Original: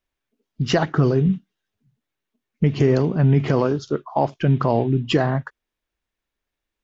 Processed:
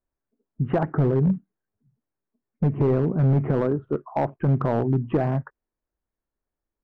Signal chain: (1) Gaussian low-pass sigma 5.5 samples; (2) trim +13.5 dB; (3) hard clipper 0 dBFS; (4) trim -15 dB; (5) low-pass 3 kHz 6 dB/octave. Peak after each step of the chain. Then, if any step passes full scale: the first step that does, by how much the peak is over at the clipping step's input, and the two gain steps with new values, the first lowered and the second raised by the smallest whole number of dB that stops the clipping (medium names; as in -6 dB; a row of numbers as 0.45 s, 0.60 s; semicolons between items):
-7.0 dBFS, +6.5 dBFS, 0.0 dBFS, -15.0 dBFS, -15.0 dBFS; step 2, 6.5 dB; step 2 +6.5 dB, step 4 -8 dB